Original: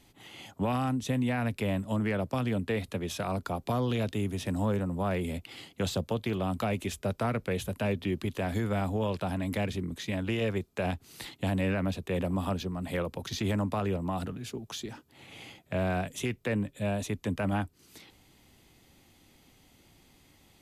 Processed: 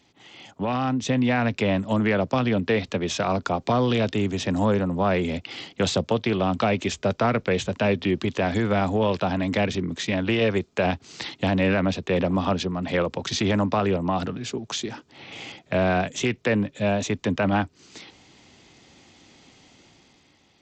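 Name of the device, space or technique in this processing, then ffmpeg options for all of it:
Bluetooth headset: -af "highpass=frequency=170:poles=1,dynaudnorm=framelen=150:gausssize=11:maxgain=8dB,aresample=16000,aresample=44100,volume=1.5dB" -ar 32000 -c:a sbc -b:a 64k

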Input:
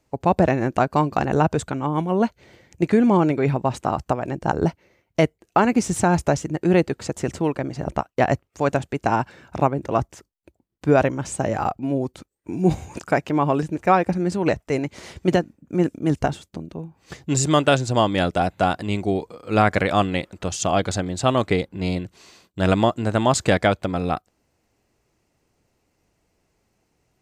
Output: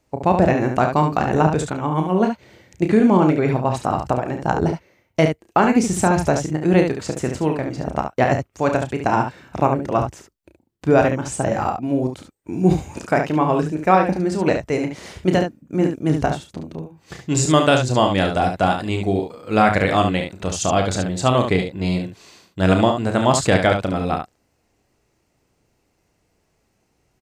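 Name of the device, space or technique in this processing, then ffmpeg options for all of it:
slapback doubling: -filter_complex "[0:a]asplit=3[link_01][link_02][link_03];[link_02]adelay=32,volume=-7.5dB[link_04];[link_03]adelay=71,volume=-6.5dB[link_05];[link_01][link_04][link_05]amix=inputs=3:normalize=0,volume=1dB"

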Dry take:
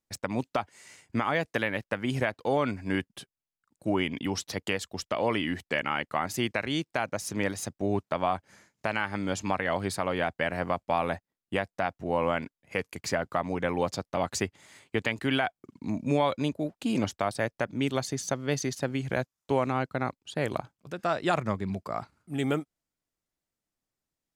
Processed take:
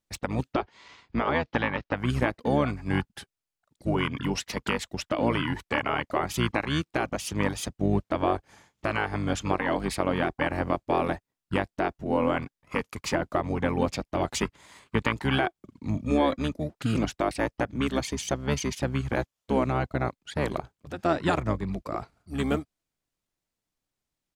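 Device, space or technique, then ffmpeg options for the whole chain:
octave pedal: -filter_complex "[0:a]asplit=2[link_01][link_02];[link_02]asetrate=22050,aresample=44100,atempo=2,volume=-2dB[link_03];[link_01][link_03]amix=inputs=2:normalize=0,asettb=1/sr,asplit=3[link_04][link_05][link_06];[link_04]atrim=end=0.544[link_07];[link_05]atrim=start=0.54:end=1.97,asetpts=PTS-STARTPTS,afade=type=in:duration=0.004:curve=qsin,afade=type=out:start_time=1.426:duration=0.004:curve=qsin,lowpass=frequency=5100:width=0.5412,lowpass=frequency=5100:width=1.3066[link_08];[link_06]atrim=start=1.966[link_09];[link_07][link_08]acrossfade=duration=0.004:curve1=hsin:curve2=qsin[link_10];[link_10][link_09]acrossfade=duration=0.004:curve1=qsin:curve2=hsin"

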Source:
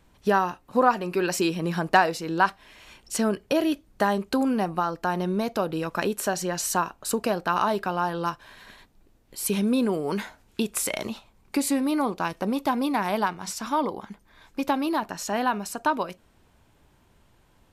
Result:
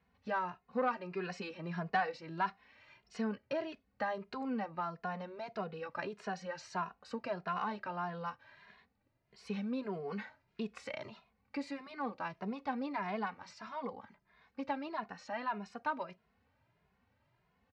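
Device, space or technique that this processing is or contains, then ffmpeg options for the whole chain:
barber-pole flanger into a guitar amplifier: -filter_complex "[0:a]asplit=2[link_01][link_02];[link_02]adelay=2.4,afreqshift=1.6[link_03];[link_01][link_03]amix=inputs=2:normalize=1,asoftclip=type=tanh:threshold=-15dB,highpass=81,equalizer=frequency=330:width_type=q:width=4:gain=-10,equalizer=frequency=2000:width_type=q:width=4:gain=4,equalizer=frequency=3400:width_type=q:width=4:gain=-8,lowpass=frequency=4400:width=0.5412,lowpass=frequency=4400:width=1.3066,volume=-8.5dB"

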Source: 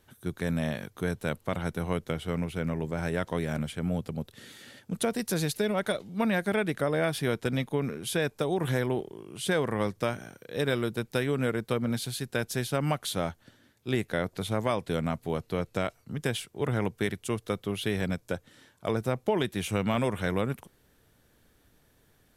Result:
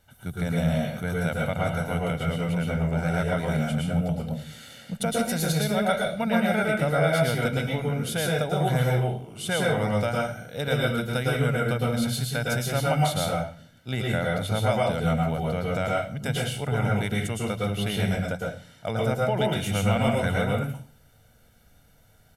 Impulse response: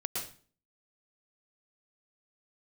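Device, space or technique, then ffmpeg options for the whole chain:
microphone above a desk: -filter_complex "[0:a]aecho=1:1:1.4:0.67[link_01];[1:a]atrim=start_sample=2205[link_02];[link_01][link_02]afir=irnorm=-1:irlink=0"

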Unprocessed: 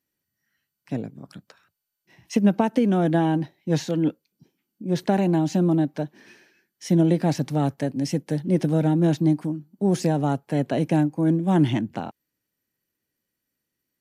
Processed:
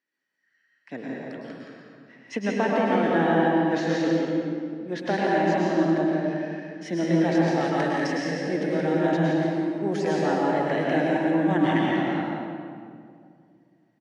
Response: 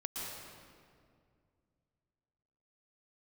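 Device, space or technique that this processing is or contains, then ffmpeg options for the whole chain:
station announcement: -filter_complex "[0:a]asettb=1/sr,asplit=3[link_01][link_02][link_03];[link_01]atrim=end=7.614[link_04];[link_02]atrim=start=7.61:end=8.07,asetpts=PTS-STARTPTS,afade=type=in:duration=0.004:curve=qsin,afade=type=out:start_time=0.456:duration=0.004:curve=qsin,tiltshelf=frequency=810:gain=-6.5[link_05];[link_03]atrim=start=8.066[link_06];[link_04][link_05]acrossfade=duration=0.004:curve1=hsin:curve2=qsin[link_07];[link_07][link_06]acrossfade=duration=0.004:curve1=qsin:curve2=hsin,highpass=320,lowpass=4700,equalizer=frequency=1800:width_type=o:width=0.52:gain=10,aecho=1:1:102|172:0.316|0.447[link_08];[1:a]atrim=start_sample=2205[link_09];[link_08][link_09]afir=irnorm=-1:irlink=0"

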